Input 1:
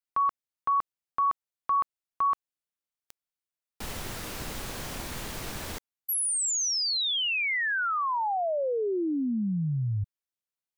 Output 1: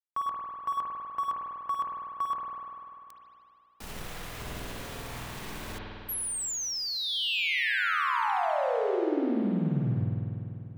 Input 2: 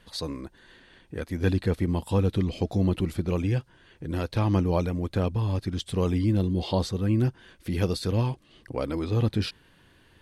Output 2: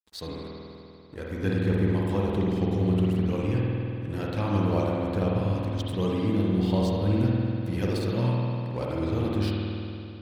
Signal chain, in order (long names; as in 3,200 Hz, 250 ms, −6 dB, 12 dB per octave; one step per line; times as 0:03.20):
dead-zone distortion −45 dBFS
spring reverb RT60 2.8 s, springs 49 ms, chirp 30 ms, DRR −4 dB
level −4 dB